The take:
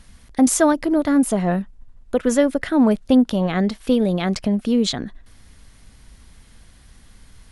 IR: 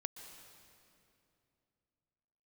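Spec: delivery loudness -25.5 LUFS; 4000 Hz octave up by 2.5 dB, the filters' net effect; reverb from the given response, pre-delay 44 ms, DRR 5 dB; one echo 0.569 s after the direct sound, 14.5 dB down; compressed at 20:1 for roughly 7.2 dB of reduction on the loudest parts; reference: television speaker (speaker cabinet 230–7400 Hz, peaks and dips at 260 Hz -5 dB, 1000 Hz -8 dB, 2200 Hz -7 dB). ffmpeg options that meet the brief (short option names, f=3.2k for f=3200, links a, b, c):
-filter_complex "[0:a]equalizer=f=4k:t=o:g=3.5,acompressor=threshold=-17dB:ratio=20,aecho=1:1:569:0.188,asplit=2[a][b];[1:a]atrim=start_sample=2205,adelay=44[c];[b][c]afir=irnorm=-1:irlink=0,volume=-3dB[d];[a][d]amix=inputs=2:normalize=0,highpass=f=230:w=0.5412,highpass=f=230:w=1.3066,equalizer=f=260:t=q:w=4:g=-5,equalizer=f=1k:t=q:w=4:g=-8,equalizer=f=2.2k:t=q:w=4:g=-7,lowpass=f=7.4k:w=0.5412,lowpass=f=7.4k:w=1.3066,volume=0.5dB"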